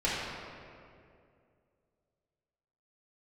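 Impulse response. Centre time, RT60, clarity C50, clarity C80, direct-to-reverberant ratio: 131 ms, 2.4 s, −2.0 dB, 0.0 dB, −10.5 dB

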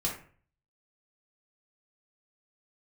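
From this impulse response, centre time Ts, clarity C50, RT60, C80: 26 ms, 6.0 dB, 0.45 s, 11.5 dB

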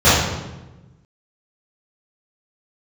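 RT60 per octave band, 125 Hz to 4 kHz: 1.6, 1.5, 1.2, 1.0, 0.90, 0.80 seconds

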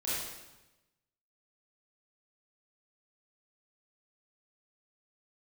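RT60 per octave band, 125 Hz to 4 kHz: 1.3, 1.1, 1.0, 1.0, 1.0, 0.95 seconds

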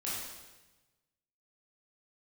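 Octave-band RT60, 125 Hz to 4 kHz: 1.6, 1.3, 1.2, 1.1, 1.1, 1.1 seconds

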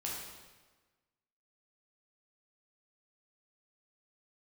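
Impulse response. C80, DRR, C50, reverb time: 3.0 dB, −4.5 dB, 0.5 dB, 1.3 s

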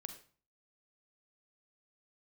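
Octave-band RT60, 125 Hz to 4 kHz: 0.55, 0.50, 0.40, 0.45, 0.40, 0.35 seconds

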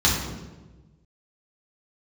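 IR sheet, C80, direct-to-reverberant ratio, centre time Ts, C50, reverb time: 5.5 dB, −6.0 dB, 54 ms, 2.5 dB, 1.2 s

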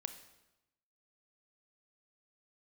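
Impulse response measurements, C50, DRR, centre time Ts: 10.5 dB, 9.0 dB, 11 ms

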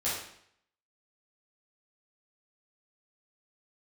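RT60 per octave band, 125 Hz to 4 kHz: 0.70, 0.65, 0.65, 0.65, 0.65, 0.65 seconds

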